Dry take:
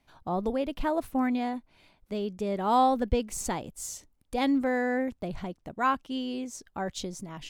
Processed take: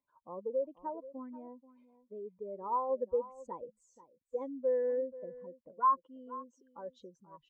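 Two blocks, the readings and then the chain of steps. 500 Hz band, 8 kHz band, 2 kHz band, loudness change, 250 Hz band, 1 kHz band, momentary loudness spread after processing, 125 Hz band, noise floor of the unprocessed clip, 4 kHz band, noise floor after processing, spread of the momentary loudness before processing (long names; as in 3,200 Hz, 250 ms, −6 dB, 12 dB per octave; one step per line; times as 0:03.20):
−3.5 dB, below −30 dB, below −20 dB, −6.0 dB, −18.5 dB, −6.5 dB, 19 LU, below −20 dB, −69 dBFS, below −30 dB, −80 dBFS, 13 LU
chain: expanding power law on the bin magnitudes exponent 2.1
pair of resonant band-passes 730 Hz, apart 1 octave
single-tap delay 483 ms −17 dB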